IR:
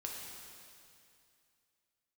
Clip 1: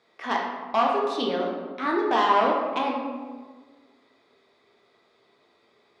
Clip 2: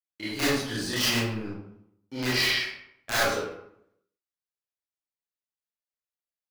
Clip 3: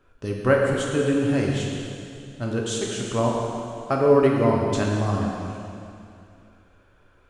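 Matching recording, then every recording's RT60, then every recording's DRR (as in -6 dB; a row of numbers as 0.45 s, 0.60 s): 3; 1.5 s, 0.75 s, 2.5 s; -2.5 dB, -11.0 dB, -2.0 dB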